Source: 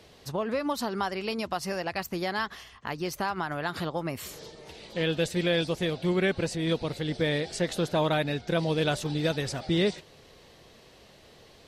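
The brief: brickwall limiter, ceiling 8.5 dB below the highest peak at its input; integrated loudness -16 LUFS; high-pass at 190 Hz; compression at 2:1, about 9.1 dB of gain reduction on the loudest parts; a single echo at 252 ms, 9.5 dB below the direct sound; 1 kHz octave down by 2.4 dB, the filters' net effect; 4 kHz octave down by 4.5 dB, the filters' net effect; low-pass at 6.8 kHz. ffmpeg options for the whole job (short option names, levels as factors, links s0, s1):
-af "highpass=190,lowpass=6800,equalizer=f=1000:t=o:g=-3,equalizer=f=4000:t=o:g=-5,acompressor=threshold=0.01:ratio=2,alimiter=level_in=2:limit=0.0631:level=0:latency=1,volume=0.501,aecho=1:1:252:0.335,volume=17.8"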